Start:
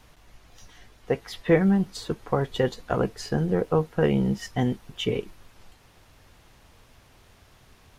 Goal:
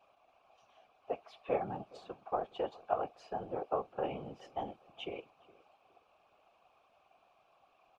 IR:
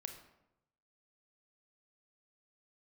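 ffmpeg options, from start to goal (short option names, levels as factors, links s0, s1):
-filter_complex "[0:a]asplit=3[s0][s1][s2];[s0]bandpass=f=730:t=q:w=8,volume=1[s3];[s1]bandpass=f=1090:t=q:w=8,volume=0.501[s4];[s2]bandpass=f=2440:t=q:w=8,volume=0.355[s5];[s3][s4][s5]amix=inputs=3:normalize=0,afftfilt=real='hypot(re,im)*cos(2*PI*random(0))':imag='hypot(re,im)*sin(2*PI*random(1))':win_size=512:overlap=0.75,asplit=2[s6][s7];[s7]adelay=415,lowpass=f=1800:p=1,volume=0.0794,asplit=2[s8][s9];[s9]adelay=415,lowpass=f=1800:p=1,volume=0.36,asplit=2[s10][s11];[s11]adelay=415,lowpass=f=1800:p=1,volume=0.36[s12];[s6][s8][s10][s12]amix=inputs=4:normalize=0,volume=2.24"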